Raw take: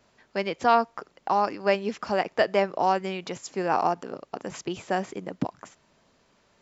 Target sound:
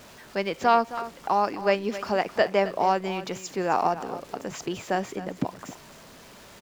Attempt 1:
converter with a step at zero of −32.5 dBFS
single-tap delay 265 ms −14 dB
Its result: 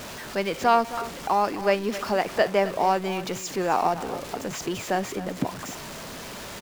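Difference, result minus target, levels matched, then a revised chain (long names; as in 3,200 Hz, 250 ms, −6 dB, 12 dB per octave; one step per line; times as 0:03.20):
converter with a step at zero: distortion +11 dB
converter with a step at zero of −44 dBFS
single-tap delay 265 ms −14 dB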